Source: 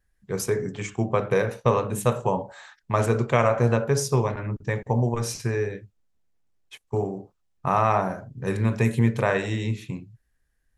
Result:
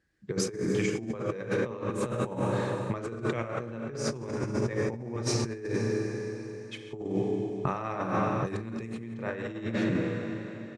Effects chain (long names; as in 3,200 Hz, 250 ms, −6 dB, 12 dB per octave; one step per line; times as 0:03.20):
loudspeaker in its box 110–8,800 Hz, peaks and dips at 320 Hz +8 dB, 710 Hz −6 dB, 1,000 Hz −6 dB, 4,600 Hz +4 dB
repeating echo 136 ms, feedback 55%, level −17.5 dB
four-comb reverb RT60 3.4 s, combs from 31 ms, DRR 5.5 dB
brickwall limiter −15 dBFS, peak gain reduction 8.5 dB
high-shelf EQ 4,400 Hz −8.5 dB, from 0:06.98 −2 dB, from 0:09.14 −12 dB
compressor whose output falls as the input rises −30 dBFS, ratio −0.5